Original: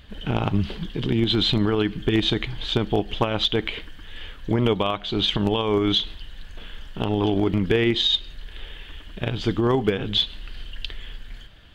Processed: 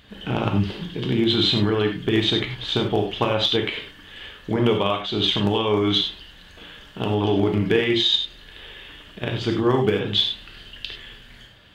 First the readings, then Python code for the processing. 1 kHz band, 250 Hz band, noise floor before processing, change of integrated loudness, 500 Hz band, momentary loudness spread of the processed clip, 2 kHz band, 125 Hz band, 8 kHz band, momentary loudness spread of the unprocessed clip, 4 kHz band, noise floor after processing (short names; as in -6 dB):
+1.5 dB, +0.5 dB, -42 dBFS, +1.5 dB, +2.0 dB, 20 LU, +2.0 dB, 0.0 dB, n/a, 20 LU, +2.0 dB, -47 dBFS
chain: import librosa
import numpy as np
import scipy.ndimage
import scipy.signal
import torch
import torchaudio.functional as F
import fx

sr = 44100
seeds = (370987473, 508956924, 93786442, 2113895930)

y = fx.highpass(x, sr, hz=150.0, slope=6)
y = fx.rev_gated(y, sr, seeds[0], gate_ms=120, shape='flat', drr_db=2.0)